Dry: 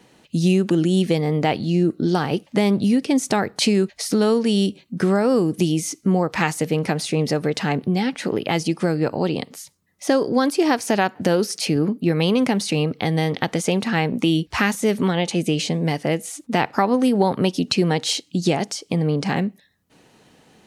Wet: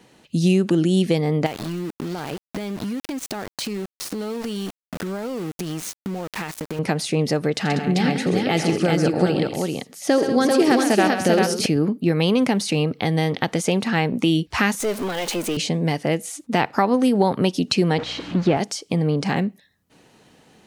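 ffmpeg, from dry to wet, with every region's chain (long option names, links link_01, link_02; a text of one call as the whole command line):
ffmpeg -i in.wav -filter_complex "[0:a]asettb=1/sr,asplit=3[link_01][link_02][link_03];[link_01]atrim=end=1.464[link_04];[link_02]atrim=start=1.46:end=6.79,asetpts=PTS-STARTPTS,afade=type=in:duration=0.004:curve=qsin,afade=type=out:start_time=5.326:duration=0.004:curve=qsin,aeval=exprs='val(0)*gte(abs(val(0)),0.0631)':channel_layout=same,acompressor=threshold=-24dB:ratio=12:attack=3.2:release=140:knee=1:detection=peak[link_05];[link_03]atrim=start=6.786[link_06];[link_04][link_05]acrossfade=duration=0.004:curve1=hsin:curve2=qsin[link_07];[link_07][link_06]acrossfade=duration=0.004:curve1=qsin:curve2=hsin,asettb=1/sr,asplit=3[link_08][link_09][link_10];[link_08]atrim=end=7.564[link_11];[link_09]atrim=start=7.56:end=11.66,asetpts=PTS-STARTPTS,afade=type=in:duration=0.004:curve=qsin,afade=type=out:start_time=4.096:duration=0.004:curve=qsin,bandreject=frequency=1000:width=6.5,aecho=1:1:84|130|192|391:0.211|0.355|0.266|0.708,atrim=end_sample=180810[link_12];[link_10]atrim=start=11.656[link_13];[link_11][link_12]acrossfade=duration=0.004:curve1=hsin:curve2=qsin[link_14];[link_14][link_13]acrossfade=duration=0.004:curve1=qsin:curve2=hsin,asettb=1/sr,asplit=3[link_15][link_16][link_17];[link_15]atrim=end=14.804[link_18];[link_16]atrim=start=14.8:end=15.57,asetpts=PTS-STARTPTS,afade=type=in:duration=0.004:curve=qsin,afade=type=out:start_time=0.766:duration=0.004:curve=qsin,aeval=exprs='val(0)+0.5*0.0596*sgn(val(0))':channel_layout=same,highpass=320,aeval=exprs='(tanh(6.31*val(0)+0.35)-tanh(0.35))/6.31':channel_layout=same[link_19];[link_17]atrim=start=15.566[link_20];[link_18][link_19]acrossfade=duration=0.004:curve1=hsin:curve2=qsin[link_21];[link_21][link_20]acrossfade=duration=0.004:curve1=qsin:curve2=hsin,asettb=1/sr,asplit=3[link_22][link_23][link_24];[link_22]atrim=end=17.984[link_25];[link_23]atrim=start=17.98:end=18.57,asetpts=PTS-STARTPTS,afade=type=in:duration=0.004:curve=qsin,afade=type=out:start_time=0.586:duration=0.004:curve=qsin,aeval=exprs='val(0)+0.5*0.0668*sgn(val(0))':channel_layout=same,aeval=exprs='val(0)+0.0112*(sin(2*PI*60*n/s)+sin(2*PI*2*60*n/s)/2+sin(2*PI*3*60*n/s)/3+sin(2*PI*4*60*n/s)/4+sin(2*PI*5*60*n/s)/5)':channel_layout=same,highpass=110,lowpass=2200[link_26];[link_24]atrim=start=18.566[link_27];[link_25][link_26]acrossfade=duration=0.004:curve1=hsin:curve2=qsin[link_28];[link_28][link_27]acrossfade=duration=0.004:curve1=qsin:curve2=hsin" out.wav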